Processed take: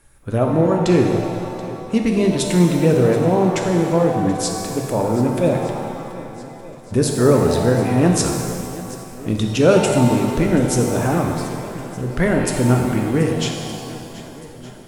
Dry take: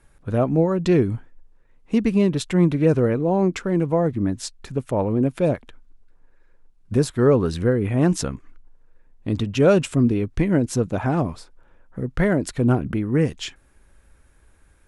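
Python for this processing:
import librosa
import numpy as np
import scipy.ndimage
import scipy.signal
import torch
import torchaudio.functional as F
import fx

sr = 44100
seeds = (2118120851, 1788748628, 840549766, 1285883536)

p1 = fx.high_shelf(x, sr, hz=5600.0, db=9.5)
p2 = fx.hum_notches(p1, sr, base_hz=50, count=4)
p3 = p2 + fx.echo_swing(p2, sr, ms=1217, ratio=1.5, feedback_pct=44, wet_db=-18, dry=0)
p4 = fx.rev_shimmer(p3, sr, seeds[0], rt60_s=2.0, semitones=7, shimmer_db=-8, drr_db=2.0)
y = p4 * librosa.db_to_amplitude(1.5)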